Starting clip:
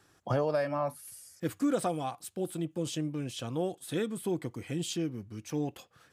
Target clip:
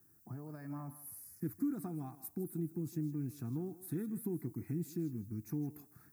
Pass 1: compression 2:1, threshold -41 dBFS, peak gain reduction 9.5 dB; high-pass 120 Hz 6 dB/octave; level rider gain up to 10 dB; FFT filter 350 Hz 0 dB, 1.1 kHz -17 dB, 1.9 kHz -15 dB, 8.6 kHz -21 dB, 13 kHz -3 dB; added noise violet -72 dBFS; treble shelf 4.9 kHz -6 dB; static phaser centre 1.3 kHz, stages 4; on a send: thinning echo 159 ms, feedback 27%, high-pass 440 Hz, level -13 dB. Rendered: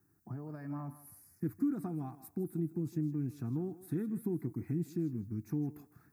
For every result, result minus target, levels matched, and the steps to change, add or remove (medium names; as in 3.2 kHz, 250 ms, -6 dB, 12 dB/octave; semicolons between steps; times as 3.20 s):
8 kHz band -9.5 dB; compression: peak gain reduction -3 dB
change: treble shelf 4.9 kHz +5 dB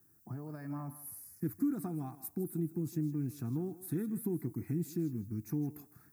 compression: peak gain reduction -3 dB
change: compression 2:1, threshold -47.5 dBFS, peak gain reduction 12.5 dB